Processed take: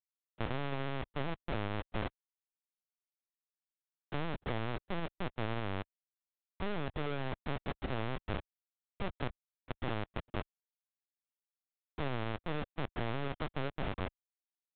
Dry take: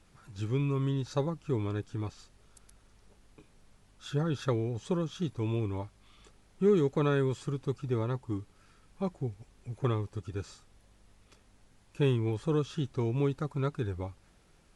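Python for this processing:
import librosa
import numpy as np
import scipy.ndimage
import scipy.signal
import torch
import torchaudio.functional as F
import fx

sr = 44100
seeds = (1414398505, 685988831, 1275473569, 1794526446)

y = fx.schmitt(x, sr, flips_db=-33.0)
y = fx.highpass(y, sr, hz=290.0, slope=6)
y = fx.level_steps(y, sr, step_db=21)
y = fx.dereverb_blind(y, sr, rt60_s=0.76)
y = fx.lpc_vocoder(y, sr, seeds[0], excitation='pitch_kept', order=10)
y = y * librosa.db_to_amplitude(8.5)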